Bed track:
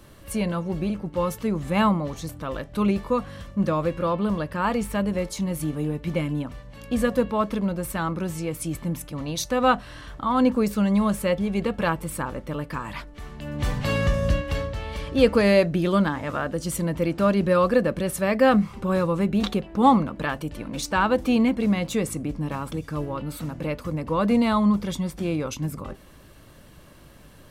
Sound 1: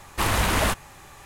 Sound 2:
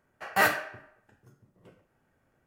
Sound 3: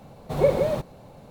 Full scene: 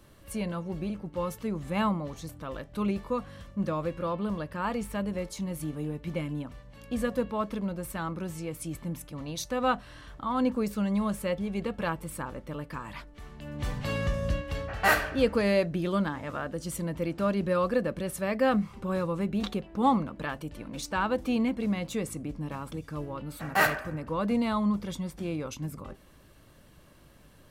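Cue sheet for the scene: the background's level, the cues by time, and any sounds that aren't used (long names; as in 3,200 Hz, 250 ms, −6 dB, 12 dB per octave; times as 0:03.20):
bed track −7 dB
0:14.47: mix in 2 + low-pass that shuts in the quiet parts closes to 2,200 Hz, open at −24 dBFS
0:23.19: mix in 2 −0.5 dB + adaptive Wiener filter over 9 samples
not used: 1, 3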